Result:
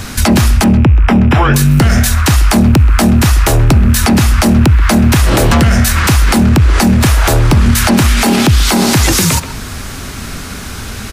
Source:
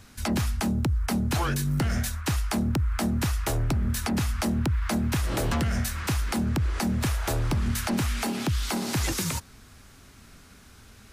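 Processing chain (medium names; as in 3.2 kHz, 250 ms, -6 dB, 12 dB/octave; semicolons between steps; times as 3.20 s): rattle on loud lows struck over -30 dBFS, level -40 dBFS; in parallel at +1 dB: compression, threshold -35 dBFS, peak gain reduction 12 dB; 0.64–1.54 s: on the sum: Savitzky-Golay filter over 25 samples; speakerphone echo 130 ms, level -16 dB; on a send at -23 dB: reverberation RT60 0.75 s, pre-delay 5 ms; on the sum: loudness maximiser +21.5 dB; trim -1 dB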